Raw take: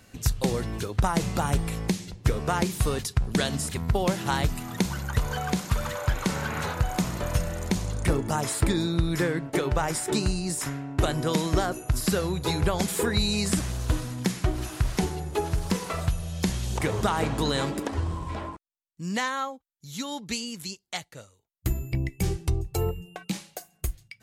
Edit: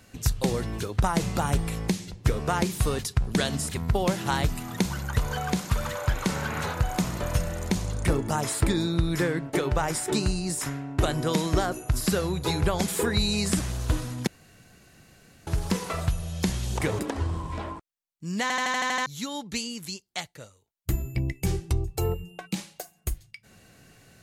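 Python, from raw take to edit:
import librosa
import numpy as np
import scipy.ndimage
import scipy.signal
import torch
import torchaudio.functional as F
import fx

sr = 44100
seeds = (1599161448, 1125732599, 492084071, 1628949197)

y = fx.edit(x, sr, fx.room_tone_fill(start_s=14.27, length_s=1.2),
    fx.cut(start_s=16.99, length_s=0.77),
    fx.stutter_over(start_s=19.19, slice_s=0.08, count=8), tone=tone)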